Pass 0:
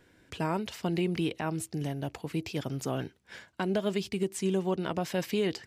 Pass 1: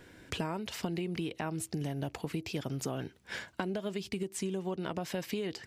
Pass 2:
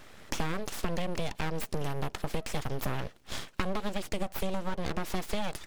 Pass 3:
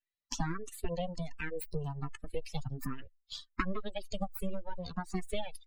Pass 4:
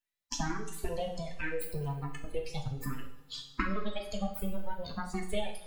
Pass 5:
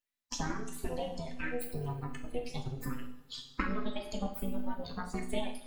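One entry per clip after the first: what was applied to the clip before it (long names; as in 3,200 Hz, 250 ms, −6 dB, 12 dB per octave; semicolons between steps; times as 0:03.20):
downward compressor 10 to 1, threshold −39 dBFS, peak gain reduction 15.5 dB; level +7 dB
full-wave rectification; level +5.5 dB
spectral dynamics exaggerated over time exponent 3; frequency shifter mixed with the dry sound +1.3 Hz; level +5.5 dB
coupled-rooms reverb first 0.55 s, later 2.9 s, from −21 dB, DRR 0.5 dB
amplitude modulation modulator 250 Hz, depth 45%; level +1 dB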